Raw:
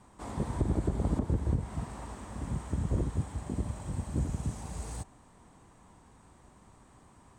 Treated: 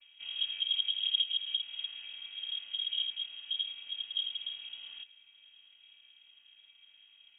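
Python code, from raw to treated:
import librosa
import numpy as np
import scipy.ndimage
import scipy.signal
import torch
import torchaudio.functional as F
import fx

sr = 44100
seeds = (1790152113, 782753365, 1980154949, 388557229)

y = fx.chord_vocoder(x, sr, chord='minor triad', root=55)
y = fx.freq_invert(y, sr, carrier_hz=3500)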